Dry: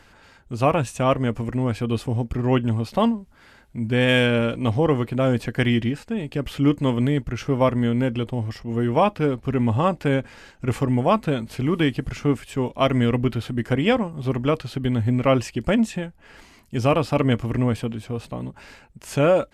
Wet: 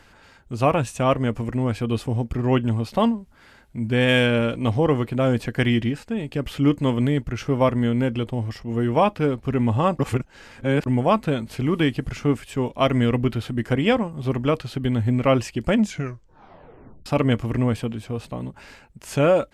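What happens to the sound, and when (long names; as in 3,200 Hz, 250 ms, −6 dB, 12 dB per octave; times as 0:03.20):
0:09.99–0:10.86: reverse
0:15.76: tape stop 1.30 s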